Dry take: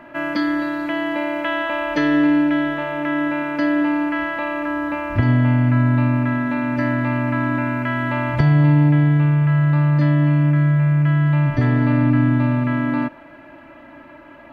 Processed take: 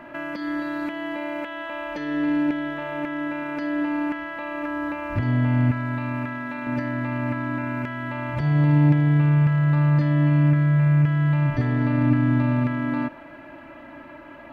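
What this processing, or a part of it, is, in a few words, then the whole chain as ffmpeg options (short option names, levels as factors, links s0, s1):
de-esser from a sidechain: -filter_complex "[0:a]asettb=1/sr,asplit=3[s0][s1][s2];[s0]atrim=end=5.714[s3];[s1]atrim=start=5.71:end=6.67,asetpts=PTS-STARTPTS,afade=t=in:d=0.004:c=qsin,afade=t=out:st=0.956:d=0.004:c=qsin,lowshelf=f=440:g=-9[s4];[s2]atrim=start=6.666[s5];[s3][s4]acrossfade=d=0.004:c1=hsin:c2=qsin[s6];[s6][s5]acrossfade=d=0.004:c1=qsin:c2=hsin,asplit=2[s7][s8];[s8]highpass=4300,apad=whole_len=640544[s9];[s7][s9]sidechaincompress=threshold=0.00398:ratio=8:attack=3.8:release=52"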